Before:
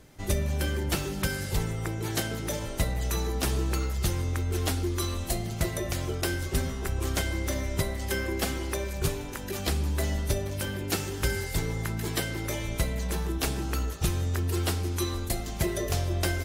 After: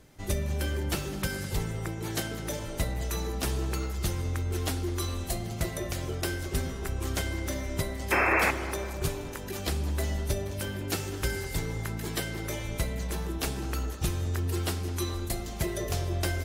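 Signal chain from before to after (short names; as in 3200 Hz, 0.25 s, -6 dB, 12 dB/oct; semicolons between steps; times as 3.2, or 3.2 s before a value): painted sound noise, 8.11–8.51, 290–2700 Hz -22 dBFS; on a send: tape echo 0.208 s, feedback 73%, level -11 dB, low-pass 1400 Hz; on the sum: gain -2.5 dB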